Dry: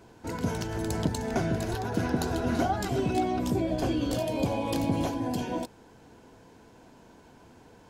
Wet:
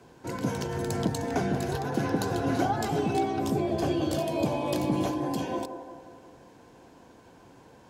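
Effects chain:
delay with a band-pass on its return 177 ms, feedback 54%, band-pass 630 Hz, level −7 dB
frequency shifter +29 Hz

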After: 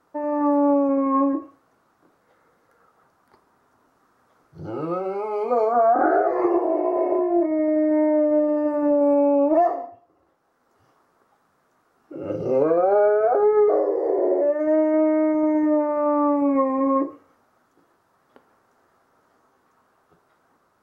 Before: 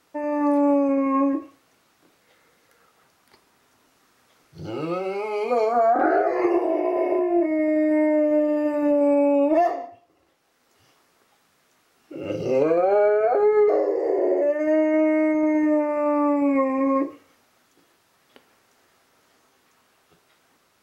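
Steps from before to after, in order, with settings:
high shelf with overshoot 1,800 Hz −10.5 dB, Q 1.5

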